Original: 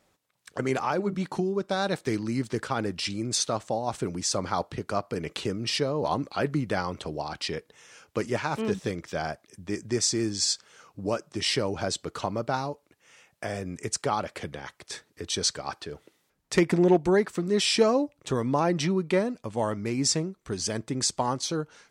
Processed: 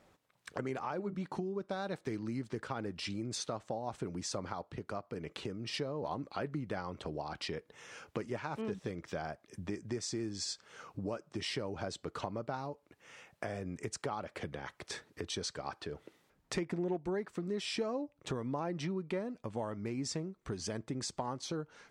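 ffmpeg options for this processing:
ffmpeg -i in.wav -filter_complex "[0:a]asplit=3[link_01][link_02][link_03];[link_01]atrim=end=4.532[link_04];[link_02]atrim=start=4.528:end=5.742,asetpts=PTS-STARTPTS,volume=-5.5dB[link_05];[link_03]atrim=start=5.738[link_06];[link_04][link_05]acrossfade=duration=0.004:curve1=hsin:curve2=hsin[link_07];[link_07][link_06]acrossfade=duration=0.004:curve1=hsin:curve2=hsin,highshelf=frequency=3700:gain=-9.5,acompressor=threshold=-43dB:ratio=3,volume=3.5dB" out.wav

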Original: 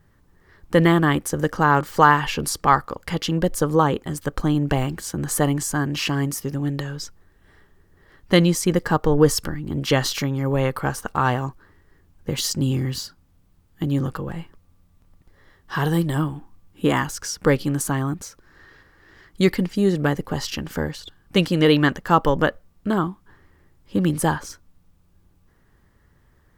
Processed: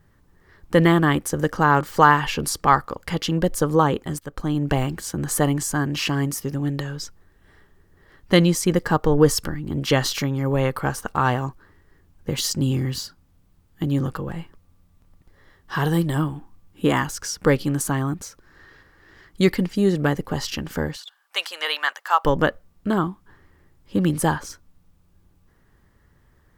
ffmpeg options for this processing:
ffmpeg -i in.wav -filter_complex "[0:a]asettb=1/sr,asplit=3[link_01][link_02][link_03];[link_01]atrim=end=20.964[link_04];[link_02]atrim=start=20.96:end=22.25,asetpts=PTS-STARTPTS,afade=type=in:duration=0.004:curve=qsin,afade=type=out:start_time=1.286:duration=0.004:curve=qsin,highpass=frequency=780:width=0.5412,highpass=frequency=780:width=1.3066[link_05];[link_03]atrim=start=22.246[link_06];[link_04][link_05]acrossfade=duration=0.004:curve1=hsin:curve2=qsin[link_07];[link_07][link_06]acrossfade=duration=0.004:curve1=qsin:curve2=hsin,asplit=2[link_08][link_09];[link_08]atrim=end=4.19,asetpts=PTS-STARTPTS,afade=type=out:start_time=4.186:duration=0.004:curve=hsin:silence=0.251189[link_10];[link_09]atrim=start=4.19,asetpts=PTS-STARTPTS,afade=type=in:duration=0.55:silence=0.251189[link_11];[link_10][link_11]concat=n=2:v=0:a=1" out.wav

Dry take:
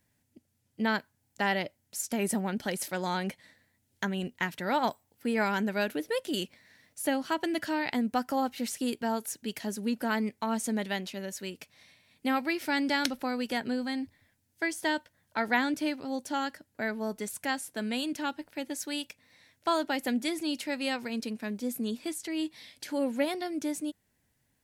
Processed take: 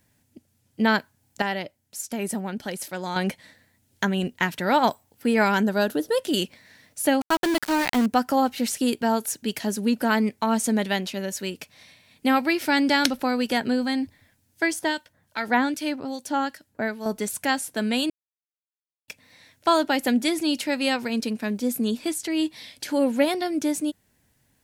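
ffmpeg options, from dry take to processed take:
ffmpeg -i in.wav -filter_complex "[0:a]asettb=1/sr,asplit=3[link_01][link_02][link_03];[link_01]atrim=end=5.634[link_04];[link_02]atrim=start=5.63:end=6.18,asetpts=PTS-STARTPTS,afade=type=in:duration=0.004:curve=qsin,afade=type=out:start_time=0.546:duration=0.004:curve=qsin,equalizer=frequency=2300:width=2.9:gain=-14[link_05];[link_03]atrim=start=6.176[link_06];[link_04][link_05]acrossfade=duration=0.004:curve1=hsin:curve2=qsin[link_07];[link_07][link_06]acrossfade=duration=0.004:curve1=qsin:curve2=hsin,asettb=1/sr,asplit=3[link_08][link_09][link_10];[link_08]atrim=end=7.214[link_11];[link_09]atrim=start=7.21:end=8.06,asetpts=PTS-STARTPTS,afade=type=in:duration=0.004:curve=qsin,afade=type=out:start_time=0.846:duration=0.004:curve=qsin,aeval=exprs='val(0)*gte(abs(val(0)),0.0224)':channel_layout=same[link_12];[link_10]atrim=start=8.056[link_13];[link_11][link_12]acrossfade=duration=0.004:curve1=hsin:curve2=qsin[link_14];[link_14][link_13]acrossfade=duration=0.004:curve1=qsin:curve2=hsin,asettb=1/sr,asplit=3[link_15][link_16][link_17];[link_15]atrim=end=14.794[link_18];[link_16]atrim=start=14.79:end=17.06,asetpts=PTS-STARTPTS,afade=type=in:duration=0.004:curve=qsin,afade=type=out:start_time=2.266:duration=0.004:curve=qsin,acrossover=split=1700[link_19][link_20];[link_19]aeval=exprs='val(0)*(1-0.7/2+0.7/2*cos(2*PI*2.5*n/s))':channel_layout=same[link_21];[link_20]aeval=exprs='val(0)*(1-0.7/2-0.7/2*cos(2*PI*2.5*n/s))':channel_layout=same[link_22];[link_21][link_22]amix=inputs=2:normalize=0[link_23];[link_17]atrim=start=17.056[link_24];[link_18][link_23]acrossfade=duration=0.004:curve1=hsin:curve2=qsin[link_25];[link_25][link_24]acrossfade=duration=0.004:curve1=qsin:curve2=hsin,asplit=5[link_26][link_27][link_28][link_29][link_30];[link_26]atrim=end=1.422[link_31];[link_27]atrim=start=1.418:end=3.162,asetpts=PTS-STARTPTS,volume=-7dB[link_32];[link_28]atrim=start=3.158:end=18.1,asetpts=PTS-STARTPTS,afade=type=out:start_time=14.938:duration=0.004:curve=hsin[link_33];[link_29]atrim=start=18.1:end=19.08,asetpts=PTS-STARTPTS,volume=0[link_34];[link_30]atrim=start=19.08,asetpts=PTS-STARTPTS,afade=type=in:duration=0.004:curve=hsin[link_35];[link_31][link_32]acrossfade=duration=0.004:curve1=hsin:curve2=hsin[link_36];[link_33][link_34][link_35]concat=n=3:v=0:a=1[link_37];[link_36][link_37]acrossfade=duration=0.004:curve1=hsin:curve2=hsin,equalizer=frequency=2000:width=4.6:gain=-2,volume=8dB" out.wav

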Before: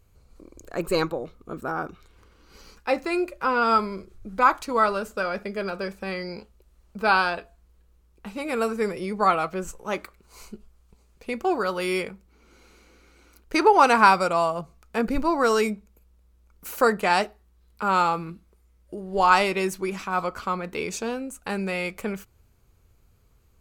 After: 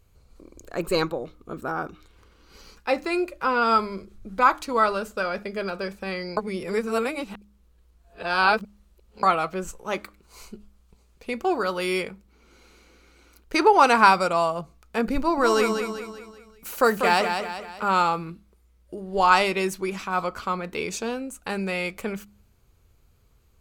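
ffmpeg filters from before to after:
ffmpeg -i in.wav -filter_complex "[0:a]asettb=1/sr,asplit=3[link_01][link_02][link_03];[link_01]atrim=end=15.184[link_04];[link_02]atrim=start=15.18:end=17.95,asetpts=PTS-STARTPTS,afade=type=in:duration=0.004:curve=qsin,afade=type=out:start_time=2.766:duration=0.004:curve=qsin,aecho=1:1:193|386|579|772|965:0.473|0.213|0.0958|0.0431|0.0194,atrim=end_sample=122157[link_05];[link_03]atrim=start=17.946[link_06];[link_04][link_05]acrossfade=duration=0.004:curve1=hsin:curve2=qsin[link_07];[link_07][link_06]acrossfade=duration=0.004:curve1=qsin:curve2=hsin,asplit=3[link_08][link_09][link_10];[link_08]atrim=end=6.372[link_11];[link_09]atrim=start=6.368:end=9.232,asetpts=PTS-STARTPTS,areverse[link_12];[link_10]atrim=start=9.228[link_13];[link_11][link_12]acrossfade=duration=0.004:curve1=hsin:curve2=hsin[link_14];[link_14][link_13]acrossfade=duration=0.004:curve1=hsin:curve2=hsin,equalizer=frequency=3600:width=1.5:gain=2.5,bandreject=frequency=102.4:width_type=h:width=4,bandreject=frequency=204.8:width_type=h:width=4,bandreject=frequency=307.2:width_type=h:width=4" out.wav

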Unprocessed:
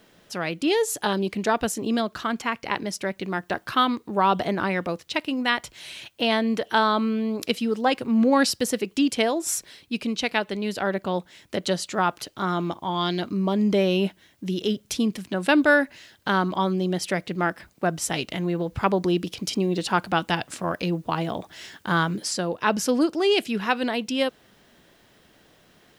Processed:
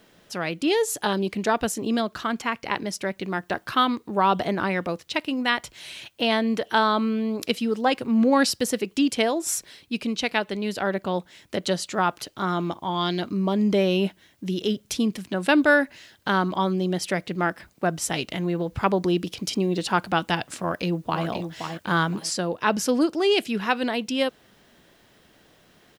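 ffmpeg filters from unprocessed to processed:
ffmpeg -i in.wav -filter_complex "[0:a]asplit=2[link_01][link_02];[link_02]afade=type=in:start_time=20.59:duration=0.01,afade=type=out:start_time=21.25:duration=0.01,aecho=0:1:520|1040|1560:0.446684|0.111671|0.0279177[link_03];[link_01][link_03]amix=inputs=2:normalize=0" out.wav

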